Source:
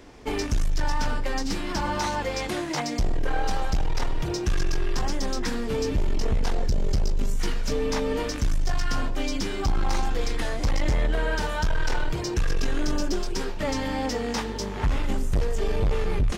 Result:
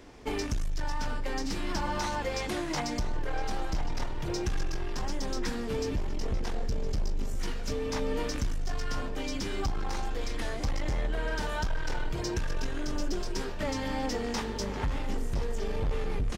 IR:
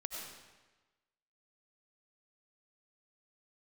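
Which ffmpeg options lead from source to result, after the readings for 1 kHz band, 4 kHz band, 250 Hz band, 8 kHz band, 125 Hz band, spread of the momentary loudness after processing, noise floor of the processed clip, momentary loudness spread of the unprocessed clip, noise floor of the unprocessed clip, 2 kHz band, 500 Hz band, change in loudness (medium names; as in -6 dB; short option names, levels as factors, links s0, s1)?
-5.5 dB, -5.0 dB, -5.0 dB, -5.0 dB, -6.5 dB, 4 LU, -34 dBFS, 3 LU, -31 dBFS, -5.5 dB, -5.0 dB, -5.5 dB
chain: -filter_complex "[0:a]acompressor=threshold=0.0631:ratio=6,asplit=2[s0][s1];[s1]adelay=1012,lowpass=f=4400:p=1,volume=0.266,asplit=2[s2][s3];[s3]adelay=1012,lowpass=f=4400:p=1,volume=0.54,asplit=2[s4][s5];[s5]adelay=1012,lowpass=f=4400:p=1,volume=0.54,asplit=2[s6][s7];[s7]adelay=1012,lowpass=f=4400:p=1,volume=0.54,asplit=2[s8][s9];[s9]adelay=1012,lowpass=f=4400:p=1,volume=0.54,asplit=2[s10][s11];[s11]adelay=1012,lowpass=f=4400:p=1,volume=0.54[s12];[s2][s4][s6][s8][s10][s12]amix=inputs=6:normalize=0[s13];[s0][s13]amix=inputs=2:normalize=0,volume=0.708"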